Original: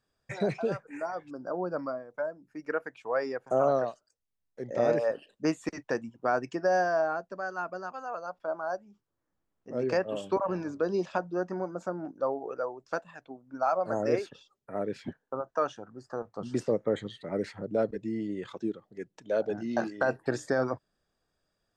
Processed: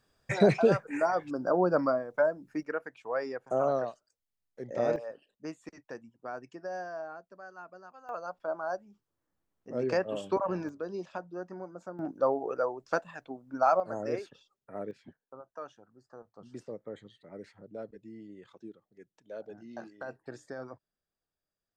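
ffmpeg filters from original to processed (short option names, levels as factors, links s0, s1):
-af "asetnsamples=n=441:p=0,asendcmd='2.63 volume volume -3dB;4.96 volume volume -12.5dB;8.09 volume volume -1dB;10.69 volume volume -8.5dB;11.99 volume volume 3dB;13.8 volume volume -6dB;14.91 volume volume -14dB',volume=2.24"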